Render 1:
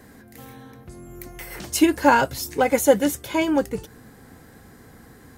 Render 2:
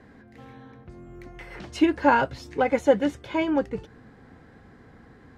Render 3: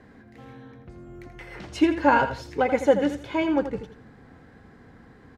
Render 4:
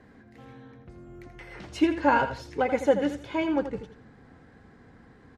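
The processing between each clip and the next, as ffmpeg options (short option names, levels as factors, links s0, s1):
-af "lowpass=3100,volume=0.708"
-af "aecho=1:1:83|166|249:0.316|0.0854|0.0231"
-af "volume=0.75" -ar 48000 -c:a libmp3lame -b:a 56k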